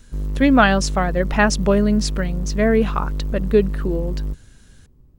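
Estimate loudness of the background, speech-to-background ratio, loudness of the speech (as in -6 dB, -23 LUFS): -27.5 LUFS, 8.0 dB, -19.5 LUFS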